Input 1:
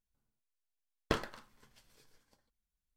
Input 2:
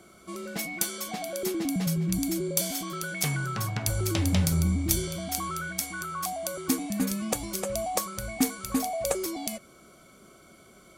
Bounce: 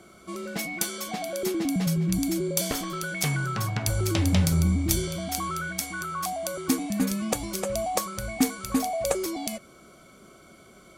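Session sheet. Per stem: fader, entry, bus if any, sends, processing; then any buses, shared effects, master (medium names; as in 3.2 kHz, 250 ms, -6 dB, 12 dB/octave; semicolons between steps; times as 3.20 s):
-1.0 dB, 1.60 s, no send, none
+2.5 dB, 0.00 s, no send, treble shelf 8.2 kHz -5 dB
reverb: none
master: none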